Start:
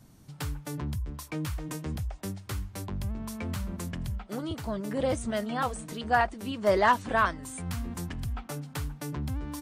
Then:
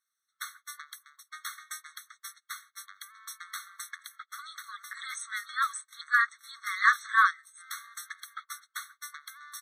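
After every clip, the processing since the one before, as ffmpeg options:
ffmpeg -i in.wav -af "agate=range=-23dB:threshold=-37dB:ratio=16:detection=peak,afftfilt=real='re*eq(mod(floor(b*sr/1024/1100),2),1)':imag='im*eq(mod(floor(b*sr/1024/1100),2),1)':win_size=1024:overlap=0.75,volume=6dB" out.wav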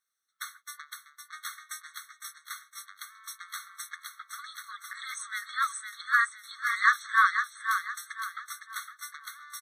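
ffmpeg -i in.wav -af "aecho=1:1:509|1018|1527|2036:0.447|0.165|0.0612|0.0226" out.wav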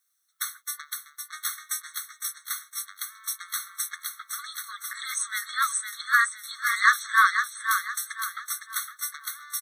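ffmpeg -i in.wav -af "crystalizer=i=2:c=0,volume=2dB" out.wav

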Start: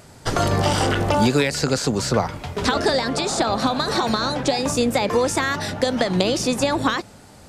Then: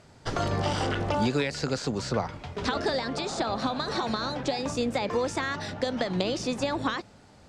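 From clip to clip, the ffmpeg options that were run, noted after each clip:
ffmpeg -i in.wav -af "lowpass=6000,volume=-8dB" out.wav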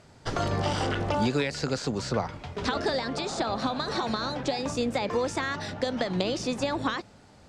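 ffmpeg -i in.wav -af anull out.wav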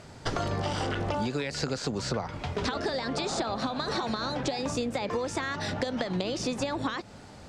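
ffmpeg -i in.wav -af "acompressor=threshold=-34dB:ratio=6,volume=6.5dB" out.wav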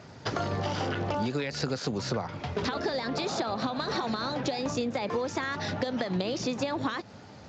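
ffmpeg -i in.wav -ar 16000 -c:a libspeex -b:a 34k out.spx

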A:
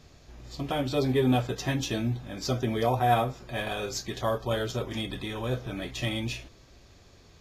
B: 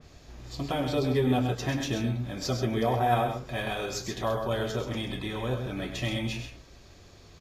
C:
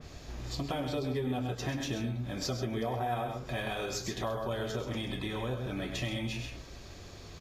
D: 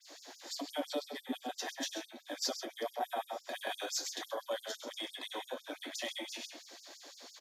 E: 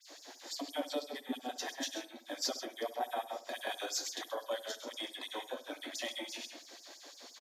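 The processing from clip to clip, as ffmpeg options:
ffmpeg -i in.wav -filter_complex "[0:a]asplit=2[link_01][link_02];[link_02]acompressor=threshold=-34dB:ratio=6,volume=-3dB[link_03];[link_01][link_03]amix=inputs=2:normalize=0,aecho=1:1:99.13|131.2:0.316|0.398,adynamicequalizer=threshold=0.00794:dfrequency=3000:dqfactor=0.7:tfrequency=3000:tqfactor=0.7:attack=5:release=100:ratio=0.375:range=1.5:mode=cutabove:tftype=highshelf,volume=-3dB" out.wav
ffmpeg -i in.wav -af "acompressor=threshold=-39dB:ratio=3,volume=4.5dB" out.wav
ffmpeg -i in.wav -af "equalizer=frequency=400:width_type=o:width=0.33:gain=-11,equalizer=frequency=1250:width_type=o:width=0.33:gain=-8,equalizer=frequency=2500:width_type=o:width=0.33:gain=-8,afftfilt=real='re*gte(b*sr/1024,230*pow(4800/230,0.5+0.5*sin(2*PI*5.9*pts/sr)))':imag='im*gte(b*sr/1024,230*pow(4800/230,0.5+0.5*sin(2*PI*5.9*pts/sr)))':win_size=1024:overlap=0.75,volume=2.5dB" out.wav
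ffmpeg -i in.wav -filter_complex "[0:a]asplit=2[link_01][link_02];[link_02]adelay=69,lowpass=frequency=1500:poles=1,volume=-14dB,asplit=2[link_03][link_04];[link_04]adelay=69,lowpass=frequency=1500:poles=1,volume=0.43,asplit=2[link_05][link_06];[link_06]adelay=69,lowpass=frequency=1500:poles=1,volume=0.43,asplit=2[link_07][link_08];[link_08]adelay=69,lowpass=frequency=1500:poles=1,volume=0.43[link_09];[link_01][link_03][link_05][link_07][link_09]amix=inputs=5:normalize=0" out.wav

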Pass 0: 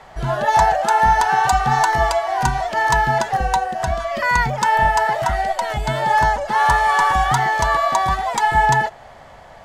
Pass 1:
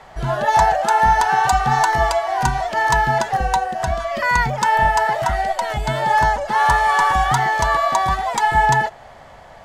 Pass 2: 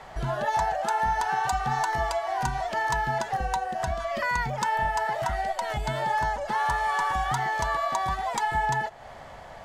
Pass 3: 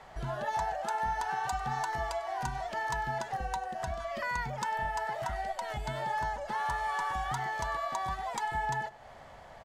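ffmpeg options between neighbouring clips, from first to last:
ffmpeg -i in.wav -af anull out.wav
ffmpeg -i in.wav -af "acompressor=threshold=-29dB:ratio=2,volume=-1.5dB" out.wav
ffmpeg -i in.wav -af "aecho=1:1:98:0.0944,volume=-7dB" out.wav

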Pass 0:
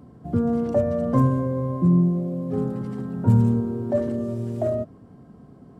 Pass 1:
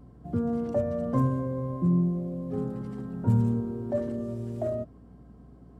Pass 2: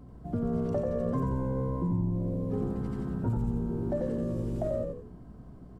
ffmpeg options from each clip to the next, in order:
ffmpeg -i in.wav -af "aeval=exprs='val(0)+0.00501*(sin(2*PI*60*n/s)+sin(2*PI*2*60*n/s)/2+sin(2*PI*3*60*n/s)/3+sin(2*PI*4*60*n/s)/4+sin(2*PI*5*60*n/s)/5)':channel_layout=same,volume=-6dB" out.wav
ffmpeg -i in.wav -filter_complex "[0:a]acompressor=threshold=-29dB:ratio=6,asplit=6[link_01][link_02][link_03][link_04][link_05][link_06];[link_02]adelay=89,afreqshift=-66,volume=-3dB[link_07];[link_03]adelay=178,afreqshift=-132,volume=-11.2dB[link_08];[link_04]adelay=267,afreqshift=-198,volume=-19.4dB[link_09];[link_05]adelay=356,afreqshift=-264,volume=-27.5dB[link_10];[link_06]adelay=445,afreqshift=-330,volume=-35.7dB[link_11];[link_01][link_07][link_08][link_09][link_10][link_11]amix=inputs=6:normalize=0,volume=1dB" out.wav

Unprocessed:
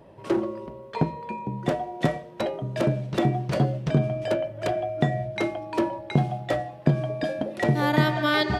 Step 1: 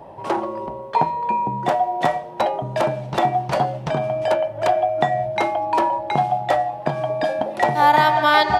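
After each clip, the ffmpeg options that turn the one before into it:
ffmpeg -i in.wav -filter_complex "[0:a]equalizer=frequency=830:width=1.9:gain=14.5,acrossover=split=730[link_01][link_02];[link_01]acompressor=threshold=-30dB:ratio=4[link_03];[link_03][link_02]amix=inputs=2:normalize=0,volume=4.5dB" out.wav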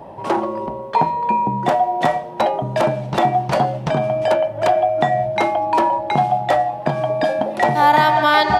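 ffmpeg -i in.wav -filter_complex "[0:a]equalizer=frequency=220:width=2:gain=4,asplit=2[link_01][link_02];[link_02]alimiter=limit=-12dB:level=0:latency=1:release=19,volume=-3dB[link_03];[link_01][link_03]amix=inputs=2:normalize=0,volume=-1.5dB" out.wav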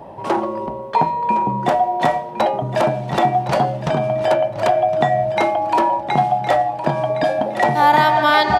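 ffmpeg -i in.wav -af "aecho=1:1:1063|2126|3189:0.237|0.0545|0.0125" out.wav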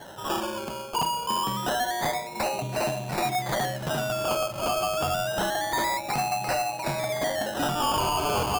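ffmpeg -i in.wav -af "crystalizer=i=4:c=0,acrusher=samples=18:mix=1:aa=0.000001:lfo=1:lforange=10.8:lforate=0.27,asoftclip=type=tanh:threshold=-14.5dB,volume=-7.5dB" out.wav

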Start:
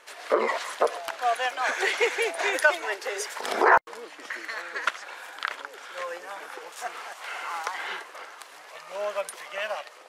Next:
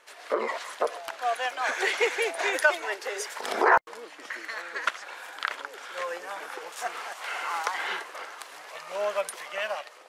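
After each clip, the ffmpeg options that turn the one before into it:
ffmpeg -i in.wav -af "dynaudnorm=framelen=630:gausssize=5:maxgain=7dB,volume=-4.5dB" out.wav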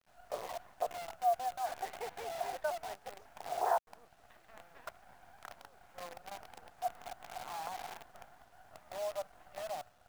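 ffmpeg -i in.wav -af "bandpass=frequency=720:width_type=q:width=7.5:csg=0,acrusher=bits=8:dc=4:mix=0:aa=0.000001,volume=-1dB" out.wav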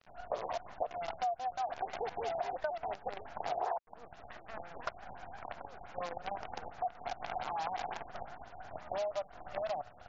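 ffmpeg -i in.wav -af "acompressor=threshold=-45dB:ratio=6,afftfilt=real='re*lt(b*sr/1024,900*pow(7500/900,0.5+0.5*sin(2*PI*5.8*pts/sr)))':imag='im*lt(b*sr/1024,900*pow(7500/900,0.5+0.5*sin(2*PI*5.8*pts/sr)))':win_size=1024:overlap=0.75,volume=11.5dB" out.wav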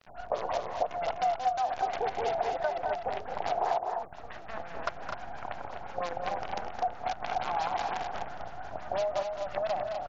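ffmpeg -i in.wav -af "aecho=1:1:215.7|250.7:0.355|0.501,volume=5.5dB" out.wav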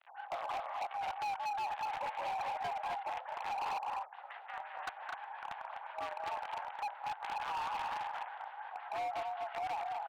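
ffmpeg -i in.wav -af "highpass=frequency=540:width_type=q:width=0.5412,highpass=frequency=540:width_type=q:width=1.307,lowpass=frequency=3300:width_type=q:width=0.5176,lowpass=frequency=3300:width_type=q:width=0.7071,lowpass=frequency=3300:width_type=q:width=1.932,afreqshift=100,asoftclip=type=hard:threshold=-31.5dB,volume=-3dB" out.wav

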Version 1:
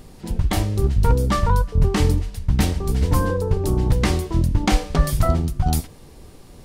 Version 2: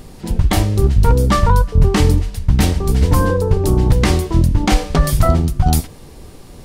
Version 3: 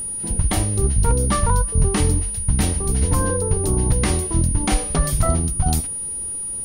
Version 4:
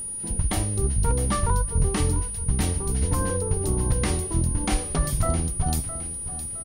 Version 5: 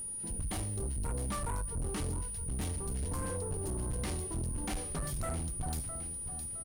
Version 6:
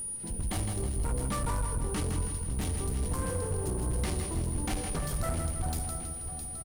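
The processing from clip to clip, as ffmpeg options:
ffmpeg -i in.wav -af "alimiter=level_in=7dB:limit=-1dB:release=50:level=0:latency=1,volume=-1dB" out.wav
ffmpeg -i in.wav -af "aeval=exprs='val(0)+0.112*sin(2*PI*9600*n/s)':channel_layout=same,volume=-6dB" out.wav
ffmpeg -i in.wav -af "aecho=1:1:663|1326|1989:0.224|0.0784|0.0274,volume=-5dB" out.wav
ffmpeg -i in.wav -af "asoftclip=type=tanh:threshold=-24.5dB,volume=-7dB" out.wav
ffmpeg -i in.wav -af "aecho=1:1:161|322|483|644|805|966:0.473|0.227|0.109|0.0523|0.0251|0.0121,volume=3.5dB" out.wav

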